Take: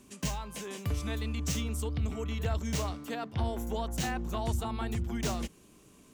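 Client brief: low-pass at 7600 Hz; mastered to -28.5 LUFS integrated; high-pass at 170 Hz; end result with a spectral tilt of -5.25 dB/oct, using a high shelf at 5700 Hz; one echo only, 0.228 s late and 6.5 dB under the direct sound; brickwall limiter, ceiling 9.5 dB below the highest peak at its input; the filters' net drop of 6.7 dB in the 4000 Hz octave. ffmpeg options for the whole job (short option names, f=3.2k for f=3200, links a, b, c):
-af "highpass=170,lowpass=7.6k,equalizer=f=4k:t=o:g=-7.5,highshelf=f=5.7k:g=-3.5,alimiter=level_in=8.5dB:limit=-24dB:level=0:latency=1,volume=-8.5dB,aecho=1:1:228:0.473,volume=12.5dB"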